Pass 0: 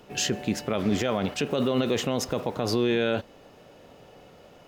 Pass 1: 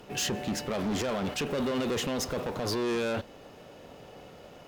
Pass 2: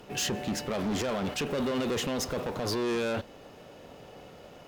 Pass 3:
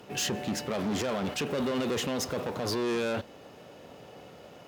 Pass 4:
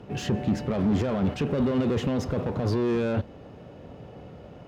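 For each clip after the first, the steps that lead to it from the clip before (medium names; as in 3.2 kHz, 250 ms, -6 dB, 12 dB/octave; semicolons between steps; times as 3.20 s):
saturation -28.5 dBFS, distortion -7 dB; Chebyshev shaper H 8 -28 dB, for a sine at -28.5 dBFS; trim +2 dB
no audible change
high-pass 77 Hz
RIAA curve playback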